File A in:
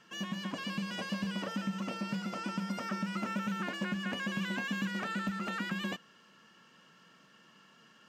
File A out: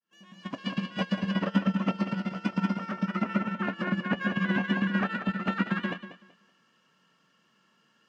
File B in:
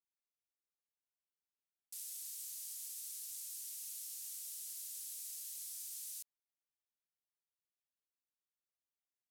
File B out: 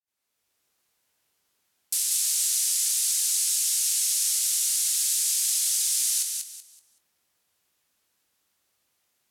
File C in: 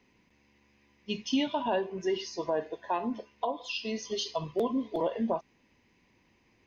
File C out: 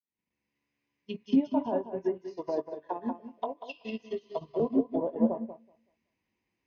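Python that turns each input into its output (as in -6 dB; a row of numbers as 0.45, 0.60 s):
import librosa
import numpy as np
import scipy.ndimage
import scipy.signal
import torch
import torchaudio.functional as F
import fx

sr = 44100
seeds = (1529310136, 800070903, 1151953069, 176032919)

p1 = fx.fade_in_head(x, sr, length_s=0.61)
p2 = scipy.signal.sosfilt(scipy.signal.butter(2, 47.0, 'highpass', fs=sr, output='sos'), p1)
p3 = fx.env_lowpass_down(p2, sr, base_hz=700.0, full_db=-27.5)
p4 = fx.level_steps(p3, sr, step_db=19)
p5 = p3 + (p4 * librosa.db_to_amplitude(1.5))
p6 = fx.doubler(p5, sr, ms=22.0, db=-11.0)
p7 = fx.echo_feedback(p6, sr, ms=189, feedback_pct=27, wet_db=-4.5)
p8 = fx.upward_expand(p7, sr, threshold_db=-36.0, expansion=2.5)
y = p8 * 10.0 ** (-12 / 20.0) / np.max(np.abs(p8))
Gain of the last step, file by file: +6.5, +20.0, +2.5 dB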